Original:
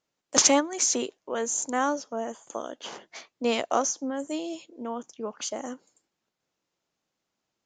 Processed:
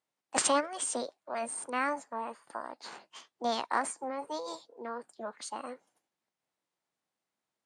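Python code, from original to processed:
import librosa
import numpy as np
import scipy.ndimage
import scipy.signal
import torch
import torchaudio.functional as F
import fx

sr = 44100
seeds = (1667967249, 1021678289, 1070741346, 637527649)

y = fx.highpass(x, sr, hz=130.0, slope=6)
y = fx.high_shelf(y, sr, hz=5400.0, db=-8.0)
y = fx.formant_shift(y, sr, semitones=6)
y = y * 10.0 ** (-5.0 / 20.0)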